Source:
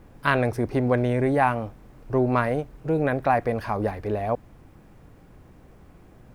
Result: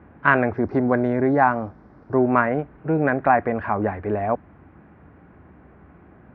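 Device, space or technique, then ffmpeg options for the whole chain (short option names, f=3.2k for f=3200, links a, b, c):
bass cabinet: -filter_complex "[0:a]asettb=1/sr,asplit=3[a][b][c];[a]atrim=end=0.574[d];[b]atrim=start=0.57:end=2.18,asetpts=PTS-STARTPTS,afade=t=in:d=0.004:c=qsin,afade=t=out:st=1.606:d=0.004:c=qsin,highshelf=f=3.9k:t=q:w=3:g=12[e];[c]atrim=start=2.176[f];[d][e]acrossfade=d=0.004:c1=hsin:c2=qsin[g];[g][f]acrossfade=d=0.004:c1=qsin:c2=hsin,highpass=f=65:w=0.5412,highpass=f=65:w=1.3066,equalizer=f=120:t=q:w=4:g=-9,equalizer=f=500:t=q:w=4:g=-5,equalizer=f=1.5k:t=q:w=4:g=3,lowpass=f=2.2k:w=0.5412,lowpass=f=2.2k:w=1.3066,volume=4.5dB"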